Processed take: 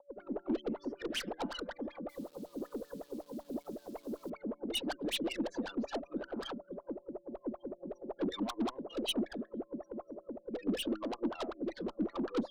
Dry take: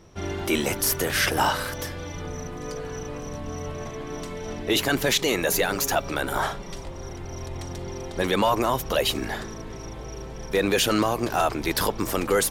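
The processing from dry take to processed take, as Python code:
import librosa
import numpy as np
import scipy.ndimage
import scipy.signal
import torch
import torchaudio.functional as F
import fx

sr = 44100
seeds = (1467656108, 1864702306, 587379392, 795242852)

y = x + 10.0 ** (-35.0 / 20.0) * np.sin(2.0 * np.pi * 570.0 * np.arange(len(x)) / sr)
y = scipy.signal.sosfilt(scipy.signal.butter(2, 99.0, 'highpass', fs=sr, output='sos'), y)
y = fx.air_absorb(y, sr, metres=100.0)
y = y + 0.47 * np.pad(y, (int(5.9 * sr / 1000.0), 0))[:len(y)]
y = fx.echo_filtered(y, sr, ms=479, feedback_pct=27, hz=4900.0, wet_db=-18)
y = fx.spec_gate(y, sr, threshold_db=-15, keep='strong')
y = fx.wah_lfo(y, sr, hz=5.3, low_hz=210.0, high_hz=3100.0, q=11.0)
y = fx.tube_stage(y, sr, drive_db=39.0, bias=0.35)
y = fx.rotary_switch(y, sr, hz=7.5, then_hz=0.8, switch_at_s=8.42)
y = fx.quant_dither(y, sr, seeds[0], bits=12, dither='none', at=(2.09, 4.3))
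y = fx.graphic_eq_10(y, sr, hz=(125, 250, 2000, 4000, 16000), db=(-12, 9, -7, 7, 7))
y = y * librosa.db_to_amplitude(7.5)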